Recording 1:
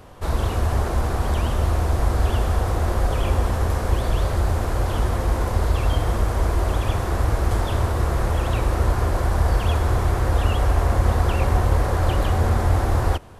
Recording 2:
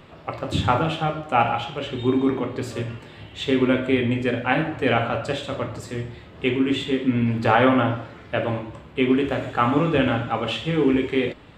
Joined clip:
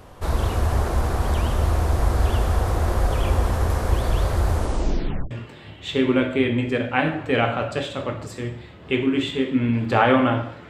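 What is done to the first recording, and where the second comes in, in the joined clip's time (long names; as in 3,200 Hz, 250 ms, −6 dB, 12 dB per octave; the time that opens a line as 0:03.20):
recording 1
0:04.54: tape stop 0.77 s
0:05.31: continue with recording 2 from 0:02.84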